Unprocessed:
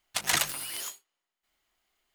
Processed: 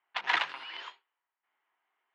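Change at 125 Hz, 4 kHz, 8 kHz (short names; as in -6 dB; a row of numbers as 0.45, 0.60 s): under -20 dB, -4.5 dB, -28.0 dB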